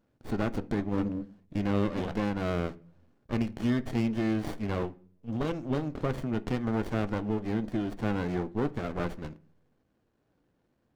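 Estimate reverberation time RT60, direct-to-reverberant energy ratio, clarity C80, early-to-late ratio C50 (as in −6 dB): 0.45 s, 11.5 dB, 26.0 dB, 21.0 dB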